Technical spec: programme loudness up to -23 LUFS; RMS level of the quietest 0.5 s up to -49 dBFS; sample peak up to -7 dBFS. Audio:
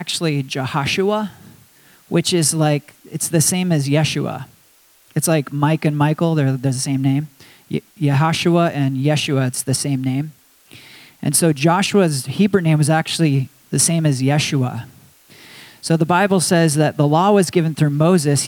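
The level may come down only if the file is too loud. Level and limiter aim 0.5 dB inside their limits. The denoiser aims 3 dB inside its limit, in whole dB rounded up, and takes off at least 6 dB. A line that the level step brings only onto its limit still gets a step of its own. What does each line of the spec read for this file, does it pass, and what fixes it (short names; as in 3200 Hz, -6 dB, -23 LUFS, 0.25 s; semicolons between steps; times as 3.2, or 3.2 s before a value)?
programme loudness -17.5 LUFS: fail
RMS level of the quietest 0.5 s -53 dBFS: OK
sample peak -2.5 dBFS: fail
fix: gain -6 dB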